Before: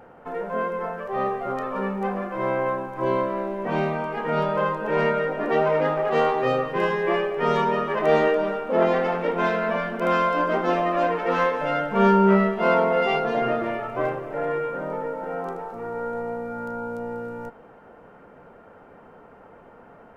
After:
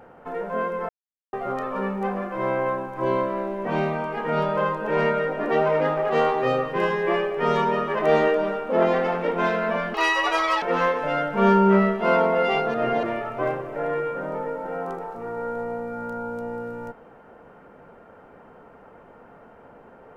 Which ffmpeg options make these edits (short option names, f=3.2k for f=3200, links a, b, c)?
-filter_complex "[0:a]asplit=7[a][b][c][d][e][f][g];[a]atrim=end=0.89,asetpts=PTS-STARTPTS,afade=t=out:st=0.886:d=0.004:c=hsin[h];[b]atrim=start=0.89:end=1.33,asetpts=PTS-STARTPTS,volume=0[i];[c]atrim=start=1.33:end=9.944,asetpts=PTS-STARTPTS,afade=t=in:d=0.004:c=hsin[j];[d]atrim=start=9.94:end=11.2,asetpts=PTS-STARTPTS,asetrate=81585,aresample=44100[k];[e]atrim=start=11.196:end=13.322[l];[f]atrim=start=13.318:end=13.612,asetpts=PTS-STARTPTS,areverse[m];[g]atrim=start=13.608[n];[h][i][j]concat=n=3:v=0:a=1[o];[o][k]acrossfade=d=0.004:c1=hsin:c2=hsin[p];[p][l]acrossfade=d=0.004:c1=hsin:c2=hsin[q];[q][m]acrossfade=d=0.004:c1=hsin:c2=hsin[r];[r][n]acrossfade=d=0.004:c1=hsin:c2=hsin"